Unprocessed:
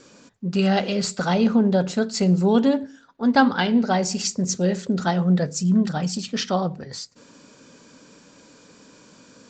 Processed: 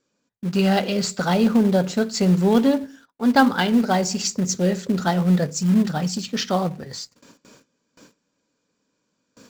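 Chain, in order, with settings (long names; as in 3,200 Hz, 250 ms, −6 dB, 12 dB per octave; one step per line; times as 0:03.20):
noise gate with hold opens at −38 dBFS
in parallel at −8 dB: log-companded quantiser 4 bits
on the sum: level −2 dB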